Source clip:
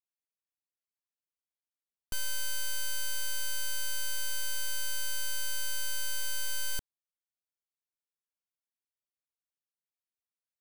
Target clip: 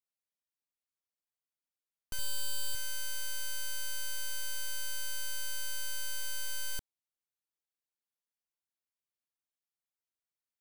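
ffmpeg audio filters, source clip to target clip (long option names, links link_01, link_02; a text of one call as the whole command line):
ffmpeg -i in.wav -filter_complex "[0:a]asettb=1/sr,asplit=3[link_01][link_02][link_03];[link_01]atrim=end=2.184[link_04];[link_02]atrim=start=2.18:end=2.75,asetpts=PTS-STARTPTS,afade=type=in:duration=0.004:curve=qsin,afade=type=out:start_time=0.566:duration=0.004:curve=qsin,aecho=1:1:6.9:0.62,atrim=end_sample=25137[link_05];[link_03]atrim=start=2.746[link_06];[link_04][link_05]acrossfade=duration=0.004:curve1=hsin:curve2=qsin[link_07];[link_07][link_06]acrossfade=duration=0.004:curve1=qsin:curve2=hsin,volume=-3.5dB" out.wav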